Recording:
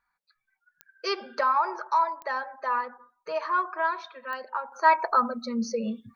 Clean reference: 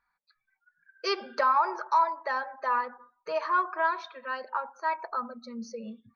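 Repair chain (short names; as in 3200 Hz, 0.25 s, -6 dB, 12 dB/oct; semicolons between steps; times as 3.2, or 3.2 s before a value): de-click; gain correction -10 dB, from 4.72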